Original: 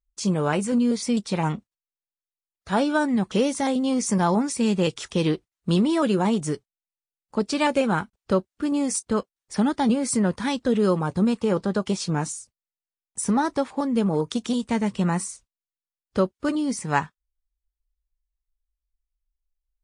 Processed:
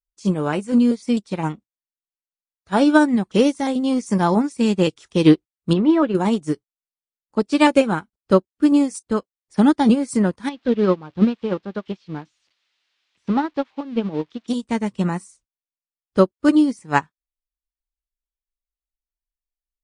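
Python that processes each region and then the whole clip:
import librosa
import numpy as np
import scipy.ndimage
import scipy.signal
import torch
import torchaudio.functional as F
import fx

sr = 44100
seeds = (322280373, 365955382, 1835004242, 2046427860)

y = fx.chain(x, sr, fx.lowpass(hz=2200.0, slope=12),
    fx.low_shelf(hz=290.0, db=-4.0), at=(5.73, 6.15))
y = fx.chain(y, sr, fx.crossing_spikes(level_db=-19.0),
    fx.lowpass(hz=3700.0, slope=24),
    fx.upward_expand(threshold_db=-40.0, expansion=1.5), at=(10.49, 14.48))
y = fx.peak_eq(y, sr, hz=310.0, db=6.0, octaves=0.33)
y = fx.upward_expand(y, sr, threshold_db=-30.0, expansion=2.5)
y = y * 10.0 ** (8.5 / 20.0)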